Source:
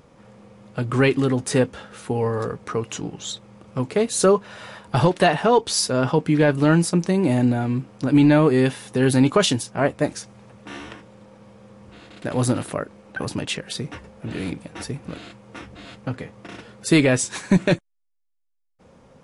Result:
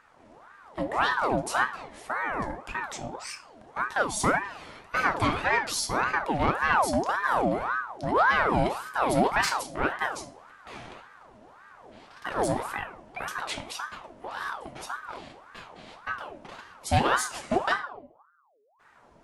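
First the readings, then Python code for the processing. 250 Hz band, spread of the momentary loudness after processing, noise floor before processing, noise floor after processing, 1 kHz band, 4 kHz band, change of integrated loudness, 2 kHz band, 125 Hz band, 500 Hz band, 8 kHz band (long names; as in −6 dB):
−13.5 dB, 19 LU, −70 dBFS, −58 dBFS, +2.0 dB, −7.0 dB, −6.5 dB, +1.5 dB, −14.0 dB, −9.5 dB, −7.5 dB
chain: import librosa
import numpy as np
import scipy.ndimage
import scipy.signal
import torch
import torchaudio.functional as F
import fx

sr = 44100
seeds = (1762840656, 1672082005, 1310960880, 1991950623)

y = 10.0 ** (-10.0 / 20.0) * np.tanh(x / 10.0 ** (-10.0 / 20.0))
y = fx.room_shoebox(y, sr, seeds[0], volume_m3=67.0, walls='mixed', distance_m=0.38)
y = fx.ring_lfo(y, sr, carrier_hz=910.0, swing_pct=55, hz=1.8)
y = F.gain(torch.from_numpy(y), -5.0).numpy()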